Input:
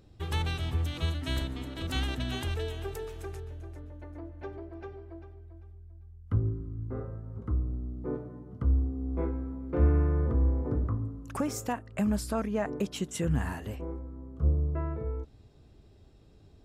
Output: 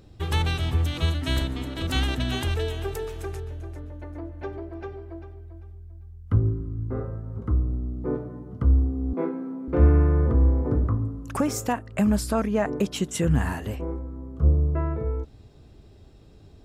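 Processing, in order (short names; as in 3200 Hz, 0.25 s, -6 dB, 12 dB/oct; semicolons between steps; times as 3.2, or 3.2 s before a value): 9.13–9.68 steep high-pass 170 Hz 36 dB/oct; gain +6.5 dB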